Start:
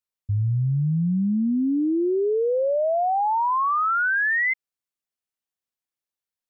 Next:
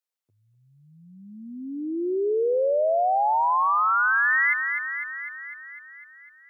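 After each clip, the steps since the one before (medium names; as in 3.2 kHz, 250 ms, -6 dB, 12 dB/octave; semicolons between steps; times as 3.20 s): high-pass 380 Hz 24 dB/octave; thinning echo 251 ms, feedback 76%, high-pass 1.1 kHz, level -5 dB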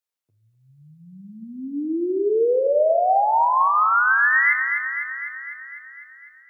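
level rider gain up to 3 dB; simulated room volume 650 m³, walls mixed, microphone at 0.52 m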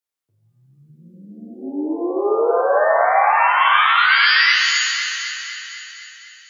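pitch-shifted reverb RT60 1.3 s, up +7 st, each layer -2 dB, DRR 1 dB; trim -1.5 dB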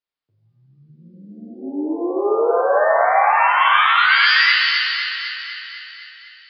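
resampled via 11.025 kHz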